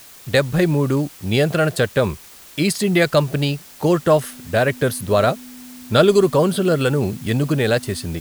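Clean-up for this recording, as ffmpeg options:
-af "bandreject=f=250:w=30,afwtdn=0.0071"

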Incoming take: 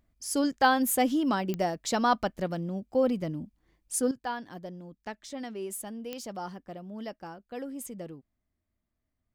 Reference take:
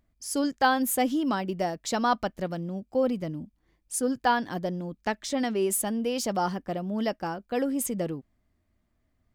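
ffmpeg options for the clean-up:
-af "adeclick=t=4,asetnsamples=n=441:p=0,asendcmd='4.11 volume volume 10.5dB',volume=1"

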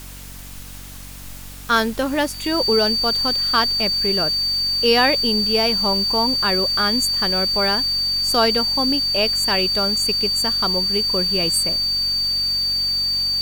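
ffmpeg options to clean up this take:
-af "bandreject=f=46.7:t=h:w=4,bandreject=f=93.4:t=h:w=4,bandreject=f=140.1:t=h:w=4,bandreject=f=186.8:t=h:w=4,bandreject=f=233.5:t=h:w=4,bandreject=f=280.2:t=h:w=4,bandreject=f=4600:w=30,afftdn=nr=30:nf=-35"

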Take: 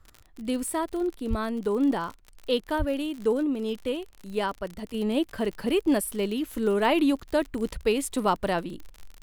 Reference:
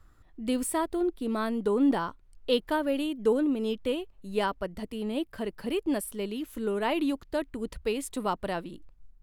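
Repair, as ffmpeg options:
-filter_complex "[0:a]adeclick=t=4,asplit=3[s0][s1][s2];[s0]afade=t=out:st=1.29:d=0.02[s3];[s1]highpass=f=140:w=0.5412,highpass=f=140:w=1.3066,afade=t=in:st=1.29:d=0.02,afade=t=out:st=1.41:d=0.02[s4];[s2]afade=t=in:st=1.41:d=0.02[s5];[s3][s4][s5]amix=inputs=3:normalize=0,asplit=3[s6][s7][s8];[s6]afade=t=out:st=2.78:d=0.02[s9];[s7]highpass=f=140:w=0.5412,highpass=f=140:w=1.3066,afade=t=in:st=2.78:d=0.02,afade=t=out:st=2.9:d=0.02[s10];[s8]afade=t=in:st=2.9:d=0.02[s11];[s9][s10][s11]amix=inputs=3:normalize=0,asetnsamples=n=441:p=0,asendcmd='4.94 volume volume -5.5dB',volume=1"

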